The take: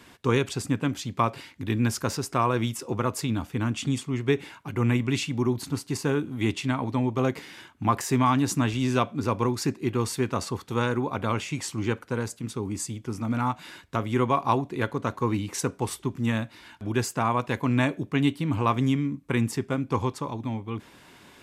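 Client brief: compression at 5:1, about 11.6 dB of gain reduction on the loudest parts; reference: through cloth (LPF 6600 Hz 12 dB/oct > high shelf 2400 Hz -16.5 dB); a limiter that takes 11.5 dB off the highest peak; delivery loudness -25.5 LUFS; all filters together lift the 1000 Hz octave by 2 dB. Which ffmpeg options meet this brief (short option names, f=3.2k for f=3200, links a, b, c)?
-af "equalizer=f=1k:t=o:g=5.5,acompressor=threshold=-27dB:ratio=5,alimiter=limit=-23.5dB:level=0:latency=1,lowpass=6.6k,highshelf=f=2.4k:g=-16.5,volume=11dB"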